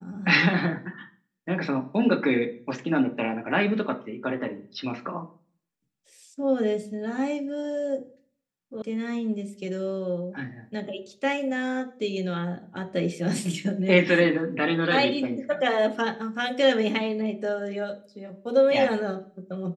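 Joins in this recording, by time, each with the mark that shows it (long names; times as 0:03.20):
0:08.82: cut off before it has died away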